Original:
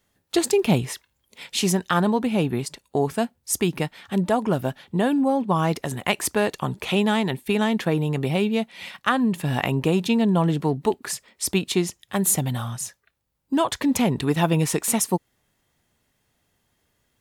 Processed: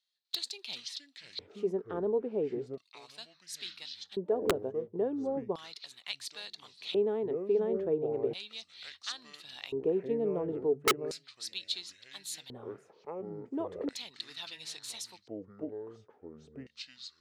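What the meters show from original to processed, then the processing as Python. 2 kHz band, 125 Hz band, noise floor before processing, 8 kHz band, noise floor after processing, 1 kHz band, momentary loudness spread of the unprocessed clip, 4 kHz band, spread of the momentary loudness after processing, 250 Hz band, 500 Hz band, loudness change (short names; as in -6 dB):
-15.0 dB, -23.5 dB, -72 dBFS, -17.5 dB, -69 dBFS, -16.5 dB, 8 LU, -7.5 dB, 16 LU, -17.0 dB, -7.0 dB, -12.0 dB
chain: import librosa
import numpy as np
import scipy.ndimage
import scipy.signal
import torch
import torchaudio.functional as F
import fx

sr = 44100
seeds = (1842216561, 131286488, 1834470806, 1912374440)

y = fx.echo_pitch(x, sr, ms=248, semitones=-6, count=2, db_per_echo=-6.0)
y = fx.filter_lfo_bandpass(y, sr, shape='square', hz=0.36, low_hz=430.0, high_hz=4100.0, q=6.0)
y = (np.mod(10.0 ** (18.5 / 20.0) * y + 1.0, 2.0) - 1.0) / 10.0 ** (18.5 / 20.0)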